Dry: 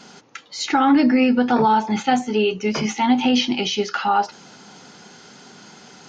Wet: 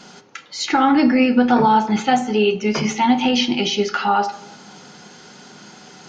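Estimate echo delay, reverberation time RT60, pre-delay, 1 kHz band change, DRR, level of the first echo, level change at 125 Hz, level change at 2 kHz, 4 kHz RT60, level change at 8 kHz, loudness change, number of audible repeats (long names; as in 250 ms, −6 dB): no echo audible, 0.95 s, 5 ms, +2.0 dB, 9.0 dB, no echo audible, +3.5 dB, +2.0 dB, 0.55 s, can't be measured, +1.5 dB, no echo audible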